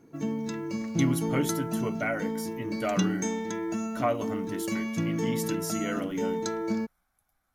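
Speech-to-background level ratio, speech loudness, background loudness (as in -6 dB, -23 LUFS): -2.0 dB, -33.5 LUFS, -31.5 LUFS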